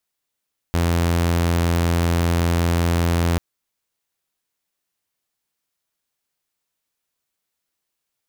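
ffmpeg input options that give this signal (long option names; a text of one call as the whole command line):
ffmpeg -f lavfi -i "aevalsrc='0.2*(2*mod(85.2*t,1)-1)':duration=2.64:sample_rate=44100" out.wav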